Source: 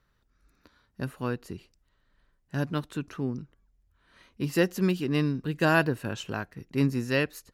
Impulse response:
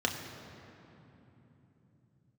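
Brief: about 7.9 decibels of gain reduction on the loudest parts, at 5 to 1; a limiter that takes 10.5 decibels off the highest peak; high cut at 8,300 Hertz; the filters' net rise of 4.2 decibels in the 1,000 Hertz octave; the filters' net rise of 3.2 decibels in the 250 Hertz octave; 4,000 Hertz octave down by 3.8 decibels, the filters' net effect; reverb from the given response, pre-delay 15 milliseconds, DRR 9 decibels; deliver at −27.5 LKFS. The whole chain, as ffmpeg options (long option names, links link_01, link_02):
-filter_complex "[0:a]lowpass=8300,equalizer=frequency=250:width_type=o:gain=4,equalizer=frequency=1000:width_type=o:gain=5.5,equalizer=frequency=4000:width_type=o:gain=-6,acompressor=threshold=-24dB:ratio=5,alimiter=level_in=2dB:limit=-24dB:level=0:latency=1,volume=-2dB,asplit=2[link_01][link_02];[1:a]atrim=start_sample=2205,adelay=15[link_03];[link_02][link_03]afir=irnorm=-1:irlink=0,volume=-17dB[link_04];[link_01][link_04]amix=inputs=2:normalize=0,volume=9dB"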